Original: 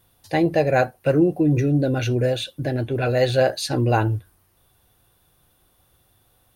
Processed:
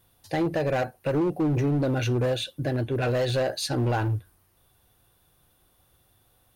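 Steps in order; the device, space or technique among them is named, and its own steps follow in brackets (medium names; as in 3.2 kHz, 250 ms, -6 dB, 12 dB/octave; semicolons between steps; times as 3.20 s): limiter into clipper (peak limiter -12.5 dBFS, peak gain reduction 5.5 dB; hard clipper -18 dBFS, distortion -14 dB); trim -2.5 dB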